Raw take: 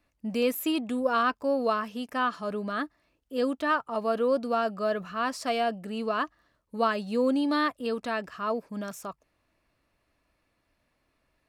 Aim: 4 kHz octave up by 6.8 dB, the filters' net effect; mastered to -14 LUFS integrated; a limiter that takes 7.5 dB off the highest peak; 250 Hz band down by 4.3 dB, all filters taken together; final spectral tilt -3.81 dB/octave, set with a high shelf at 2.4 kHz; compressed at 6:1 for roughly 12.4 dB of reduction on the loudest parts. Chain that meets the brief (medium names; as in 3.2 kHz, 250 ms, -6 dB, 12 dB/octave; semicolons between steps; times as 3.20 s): peaking EQ 250 Hz -5 dB; treble shelf 2.4 kHz +3 dB; peaking EQ 4 kHz +6.5 dB; compression 6:1, threshold -34 dBFS; trim +26 dB; peak limiter -4.5 dBFS